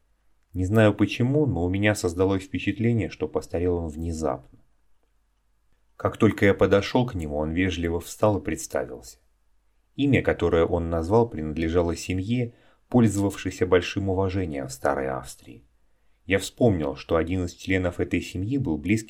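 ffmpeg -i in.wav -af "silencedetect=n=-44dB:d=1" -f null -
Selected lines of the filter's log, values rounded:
silence_start: 4.55
silence_end: 6.00 | silence_duration: 1.45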